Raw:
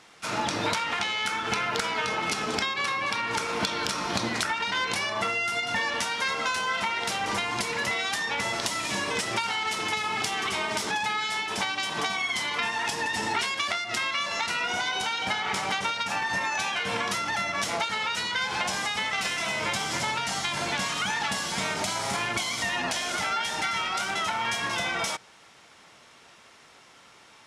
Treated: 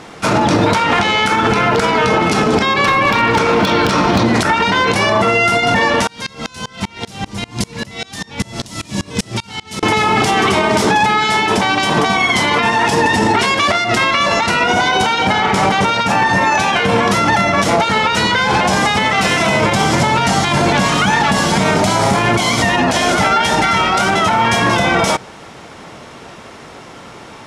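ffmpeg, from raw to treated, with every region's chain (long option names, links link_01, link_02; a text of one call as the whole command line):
ffmpeg -i in.wav -filter_complex "[0:a]asettb=1/sr,asplit=3[link_01][link_02][link_03];[link_01]atrim=end=2.854[link_04];[link_02]atrim=start=2.85:end=4.26,asetpts=PTS-STARTPTS,afade=type=in:duration=0.004:curve=qsin,afade=type=out:start_time=1.406:duration=0.004:curve=qsin,lowpass=3200,aemphasis=mode=production:type=75fm,volume=22dB,asoftclip=hard,volume=-22dB[link_05];[link_03]atrim=start=4.256[link_06];[link_04][link_05]acrossfade=duration=0.004:curve1=hsin:curve2=qsin[link_07];[link_07][link_06]acrossfade=duration=0.004:curve1=qsin:curve2=hsin,asettb=1/sr,asplit=3[link_08][link_09][link_10];[link_08]atrim=end=6.074[link_11];[link_09]atrim=start=6.07:end=9.83,asetpts=PTS-STARTPTS,afade=type=in:duration=0.004:curve=qsin,afade=type=out:start_time=3.756:duration=0.004:curve=qsin,acrossover=split=230|3000[link_12][link_13][link_14];[link_13]acompressor=threshold=-51dB:ratio=2:attack=3.2:release=140:knee=2.83:detection=peak[link_15];[link_12][link_15][link_14]amix=inputs=3:normalize=0,aeval=exprs='val(0)*pow(10,-27*if(lt(mod(-5.1*n/s,1),2*abs(-5.1)/1000),1-mod(-5.1*n/s,1)/(2*abs(-5.1)/1000),(mod(-5.1*n/s,1)-2*abs(-5.1)/1000)/(1-2*abs(-5.1)/1000))/20)':channel_layout=same[link_16];[link_10]atrim=start=9.826[link_17];[link_11][link_16]acrossfade=duration=0.004:curve1=hsin:curve2=qsin[link_18];[link_18][link_17]acrossfade=duration=0.004:curve1=qsin:curve2=hsin,tiltshelf=frequency=970:gain=7,alimiter=level_in=22.5dB:limit=-1dB:release=50:level=0:latency=1,volume=-3.5dB" out.wav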